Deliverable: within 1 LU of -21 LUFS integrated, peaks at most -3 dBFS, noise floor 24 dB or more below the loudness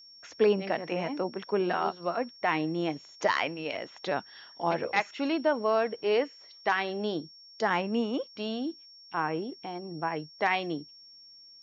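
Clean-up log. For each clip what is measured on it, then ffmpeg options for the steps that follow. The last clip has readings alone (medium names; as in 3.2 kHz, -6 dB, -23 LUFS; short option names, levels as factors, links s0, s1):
steady tone 5.5 kHz; tone level -50 dBFS; loudness -30.5 LUFS; peak level -13.0 dBFS; loudness target -21.0 LUFS
-> -af "bandreject=f=5500:w=30"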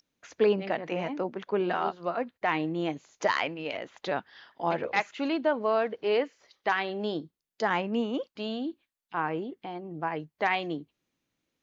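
steady tone not found; loudness -30.5 LUFS; peak level -13.0 dBFS; loudness target -21.0 LUFS
-> -af "volume=2.99"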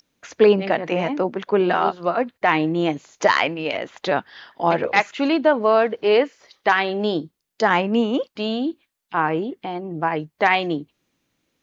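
loudness -21.0 LUFS; peak level -3.5 dBFS; noise floor -78 dBFS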